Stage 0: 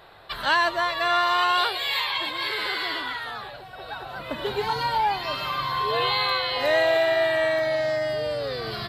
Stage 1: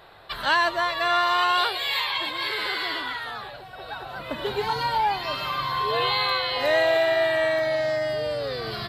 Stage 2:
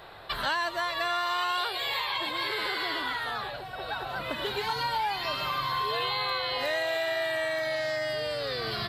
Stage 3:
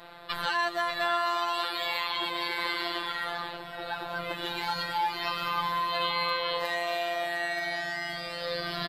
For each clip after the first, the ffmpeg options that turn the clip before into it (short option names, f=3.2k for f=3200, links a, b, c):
-af anull
-filter_complex "[0:a]acrossover=split=1200|5800[a][b][c];[a]acompressor=threshold=-36dB:ratio=4[d];[b]acompressor=threshold=-35dB:ratio=4[e];[c]acompressor=threshold=-49dB:ratio=4[f];[d][e][f]amix=inputs=3:normalize=0,volume=2.5dB"
-filter_complex "[0:a]asplit=2[a][b];[b]adelay=583.1,volume=-10dB,highshelf=f=4k:g=-13.1[c];[a][c]amix=inputs=2:normalize=0,afftfilt=real='hypot(re,im)*cos(PI*b)':imag='0':win_size=1024:overlap=0.75,volume=2.5dB"